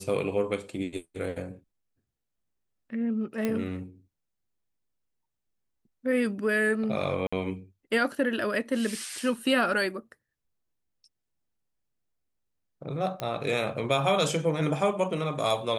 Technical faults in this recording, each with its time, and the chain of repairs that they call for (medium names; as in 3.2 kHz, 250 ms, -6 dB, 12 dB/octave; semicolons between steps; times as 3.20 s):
3.45 s: pop -15 dBFS
7.27–7.33 s: dropout 55 ms
13.20 s: pop -17 dBFS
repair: de-click; interpolate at 7.27 s, 55 ms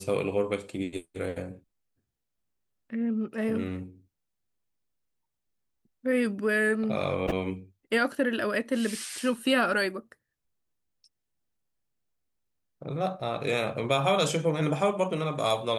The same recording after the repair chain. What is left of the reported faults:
nothing left